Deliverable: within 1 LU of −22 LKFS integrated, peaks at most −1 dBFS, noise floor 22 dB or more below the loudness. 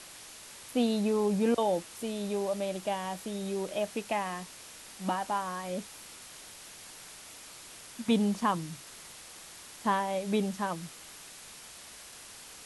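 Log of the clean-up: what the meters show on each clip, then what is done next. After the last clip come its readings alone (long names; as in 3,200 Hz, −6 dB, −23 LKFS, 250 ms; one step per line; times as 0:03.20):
background noise floor −49 dBFS; target noise floor −54 dBFS; integrated loudness −31.5 LKFS; sample peak −14.0 dBFS; target loudness −22.0 LKFS
→ broadband denoise 6 dB, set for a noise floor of −49 dBFS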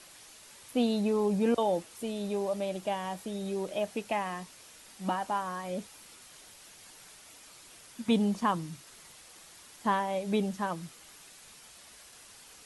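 background noise floor −54 dBFS; integrated loudness −32.0 LKFS; sample peak −14.5 dBFS; target loudness −22.0 LKFS
→ level +10 dB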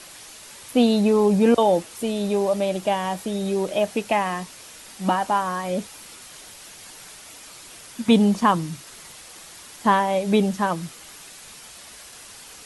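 integrated loudness −22.0 LKFS; sample peak −4.5 dBFS; background noise floor −44 dBFS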